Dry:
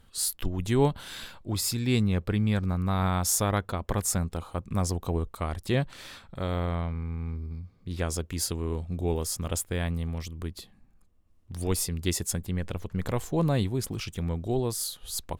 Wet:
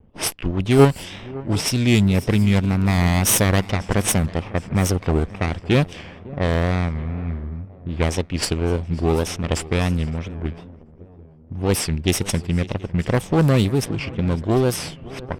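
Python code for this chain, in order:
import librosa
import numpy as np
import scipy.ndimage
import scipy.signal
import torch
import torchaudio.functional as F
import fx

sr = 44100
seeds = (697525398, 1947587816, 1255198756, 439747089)

p1 = fx.lower_of_two(x, sr, delay_ms=0.36)
p2 = fx.level_steps(p1, sr, step_db=10)
p3 = p1 + F.gain(torch.from_numpy(p2), -1.5).numpy()
p4 = fx.low_shelf(p3, sr, hz=73.0, db=-9.5)
p5 = p4 + fx.echo_swing(p4, sr, ms=738, ratio=3, feedback_pct=42, wet_db=-19.5, dry=0)
p6 = fx.wow_flutter(p5, sr, seeds[0], rate_hz=2.1, depth_cents=110.0)
p7 = fx.env_lowpass(p6, sr, base_hz=670.0, full_db=-21.0)
y = F.gain(torch.from_numpy(p7), 7.0).numpy()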